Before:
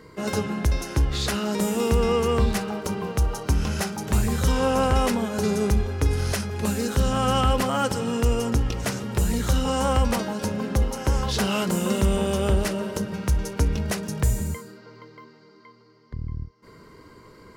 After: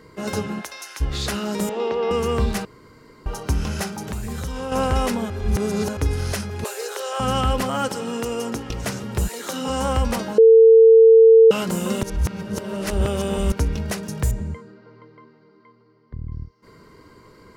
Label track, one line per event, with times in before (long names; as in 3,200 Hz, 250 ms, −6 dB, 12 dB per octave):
0.600000	1.000000	high-pass filter 690 Hz → 1,500 Hz
1.690000	2.110000	loudspeaker in its box 390–4,100 Hz, peaks and dips at 390 Hz +4 dB, 550 Hz +5 dB, 850 Hz +4 dB, 1,400 Hz −4 dB, 2,600 Hz −3 dB
2.650000	3.260000	fill with room tone
3.940000	4.720000	downward compressor, threshold −25 dBFS
5.300000	5.970000	reverse
6.640000	7.200000	Butterworth high-pass 370 Hz 72 dB per octave
7.880000	8.700000	high-pass filter 210 Hz
9.270000	9.680000	high-pass filter 500 Hz → 150 Hz 24 dB per octave
10.380000	11.510000	beep over 450 Hz −6.5 dBFS
12.030000	13.520000	reverse
14.310000	16.320000	head-to-tape spacing loss at 10 kHz 25 dB